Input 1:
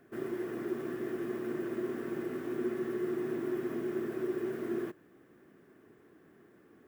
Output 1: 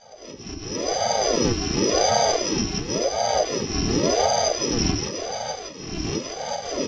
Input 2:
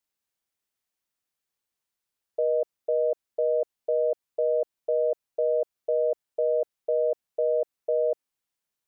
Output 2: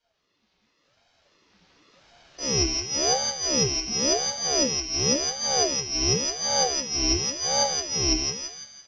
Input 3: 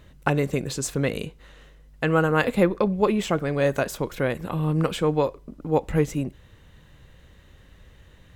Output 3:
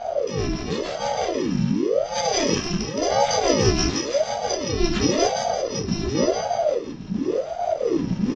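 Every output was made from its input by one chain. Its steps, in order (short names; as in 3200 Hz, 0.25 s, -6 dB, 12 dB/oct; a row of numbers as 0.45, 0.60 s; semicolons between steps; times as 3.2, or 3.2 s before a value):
FFT order left unsorted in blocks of 128 samples; recorder AGC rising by 9.2 dB/s; steep low-pass 5700 Hz 48 dB/oct; low shelf 430 Hz +3 dB; comb 1.3 ms, depth 86%; auto swell 0.434 s; compressor 2:1, threshold -40 dBFS; on a send: thinning echo 0.169 s, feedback 48%, high-pass 330 Hz, level -3 dB; on the sum: shoebox room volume 160 m³, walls furnished, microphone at 1.9 m; ring modulator with a swept carrier 440 Hz, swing 60%, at 0.92 Hz; match loudness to -23 LUFS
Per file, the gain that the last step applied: +13.0, +10.0, +11.0 dB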